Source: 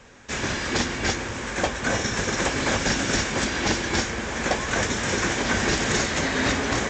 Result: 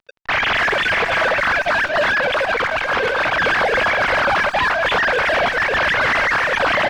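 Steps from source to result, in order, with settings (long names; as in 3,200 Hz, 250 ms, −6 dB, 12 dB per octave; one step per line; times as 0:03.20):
three sine waves on the formant tracks
0:00.84–0:01.37: comb filter 6.1 ms, depth 58%
0:05.74–0:06.44: high-pass filter 750 Hz 12 dB per octave
compressor whose output falls as the input rises −27 dBFS, ratio −0.5
fuzz pedal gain 42 dB, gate −40 dBFS
high-frequency loss of the air 280 metres
far-end echo of a speakerphone 270 ms, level −9 dB
0:02.12–0:03.38: saturating transformer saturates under 370 Hz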